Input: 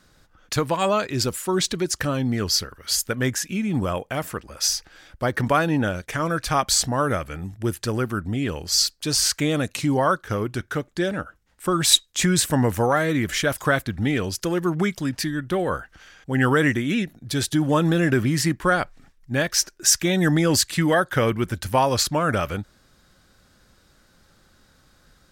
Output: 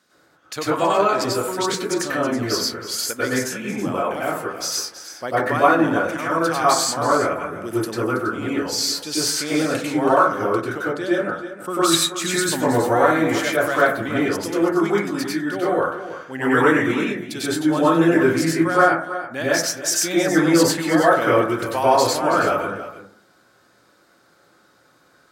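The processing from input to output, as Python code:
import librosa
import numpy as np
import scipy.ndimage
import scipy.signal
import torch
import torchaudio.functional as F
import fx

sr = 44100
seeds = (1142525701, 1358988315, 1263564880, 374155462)

p1 = scipy.signal.sosfilt(scipy.signal.butter(2, 260.0, 'highpass', fs=sr, output='sos'), x)
p2 = p1 + fx.echo_single(p1, sr, ms=325, db=-13.0, dry=0)
p3 = fx.rev_plate(p2, sr, seeds[0], rt60_s=0.53, hf_ratio=0.25, predelay_ms=85, drr_db=-8.5)
y = F.gain(torch.from_numpy(p3), -5.0).numpy()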